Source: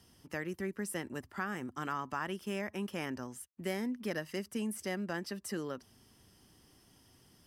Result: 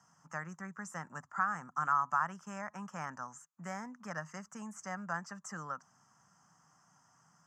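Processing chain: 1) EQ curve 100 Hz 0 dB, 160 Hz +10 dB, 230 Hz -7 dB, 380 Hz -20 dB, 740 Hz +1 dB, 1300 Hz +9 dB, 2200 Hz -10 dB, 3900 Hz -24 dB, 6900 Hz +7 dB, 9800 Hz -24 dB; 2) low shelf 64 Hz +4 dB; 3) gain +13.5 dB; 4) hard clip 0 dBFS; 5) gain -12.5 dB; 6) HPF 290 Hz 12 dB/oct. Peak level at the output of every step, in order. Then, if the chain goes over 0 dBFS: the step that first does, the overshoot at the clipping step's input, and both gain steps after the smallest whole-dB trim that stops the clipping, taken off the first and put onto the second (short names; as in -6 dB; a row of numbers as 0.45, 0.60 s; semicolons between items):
-18.5, -18.5, -5.0, -5.0, -17.5, -18.0 dBFS; no overload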